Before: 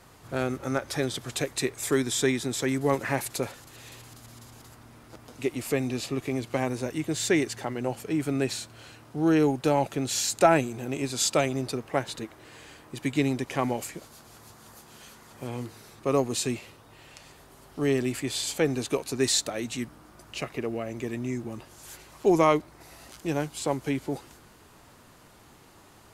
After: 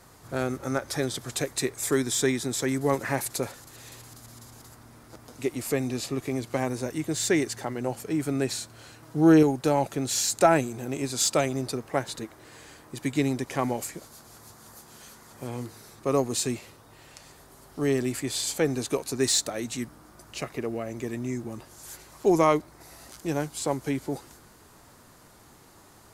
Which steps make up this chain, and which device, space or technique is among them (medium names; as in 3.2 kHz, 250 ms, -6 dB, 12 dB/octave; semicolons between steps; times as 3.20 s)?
9.02–9.43 s: comb 6.2 ms, depth 88%; exciter from parts (in parallel at -6 dB: high-pass 2.6 kHz 24 dB/octave + saturation -24.5 dBFS, distortion -13 dB)